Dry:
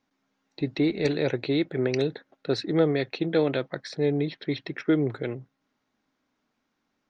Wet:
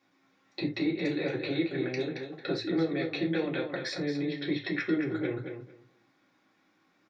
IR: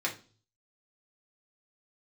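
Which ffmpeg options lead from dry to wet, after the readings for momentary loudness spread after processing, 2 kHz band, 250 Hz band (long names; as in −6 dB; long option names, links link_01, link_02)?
7 LU, 0.0 dB, −3.0 dB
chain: -filter_complex "[0:a]acompressor=threshold=-36dB:ratio=6,asplit=2[link_01][link_02];[link_02]adelay=224,lowpass=frequency=4800:poles=1,volume=-7dB,asplit=2[link_03][link_04];[link_04]adelay=224,lowpass=frequency=4800:poles=1,volume=0.17,asplit=2[link_05][link_06];[link_06]adelay=224,lowpass=frequency=4800:poles=1,volume=0.17[link_07];[link_01][link_03][link_05][link_07]amix=inputs=4:normalize=0[link_08];[1:a]atrim=start_sample=2205,atrim=end_sample=4410[link_09];[link_08][link_09]afir=irnorm=-1:irlink=0,volume=2dB"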